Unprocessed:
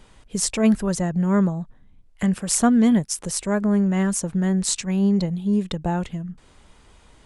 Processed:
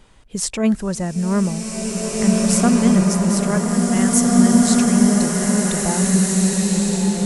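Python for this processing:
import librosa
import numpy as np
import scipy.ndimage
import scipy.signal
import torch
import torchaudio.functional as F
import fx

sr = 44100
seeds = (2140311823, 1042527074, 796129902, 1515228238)

y = fx.tilt_eq(x, sr, slope=2.5, at=(3.4, 4.27))
y = fx.rev_bloom(y, sr, seeds[0], attack_ms=2150, drr_db=-4.0)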